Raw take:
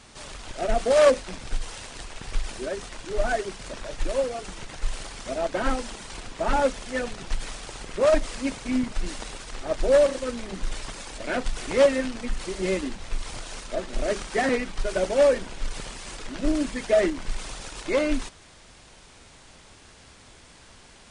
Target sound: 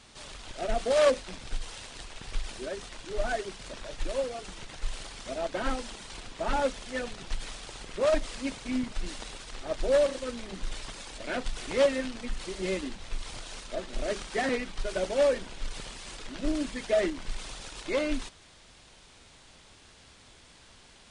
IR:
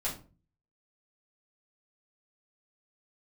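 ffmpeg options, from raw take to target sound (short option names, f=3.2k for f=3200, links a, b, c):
-af "equalizer=f=3.6k:w=1.4:g=4,volume=-5.5dB"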